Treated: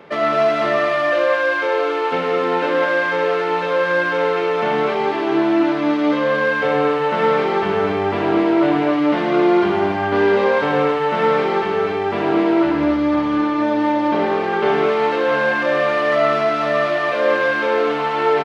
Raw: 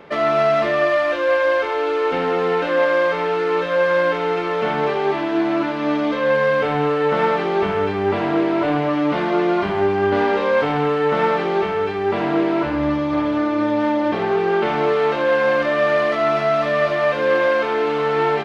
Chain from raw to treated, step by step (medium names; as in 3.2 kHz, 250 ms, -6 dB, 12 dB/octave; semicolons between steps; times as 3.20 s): high-pass 92 Hz; loudspeakers at several distances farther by 36 m -7 dB, 74 m -6 dB, 100 m -11 dB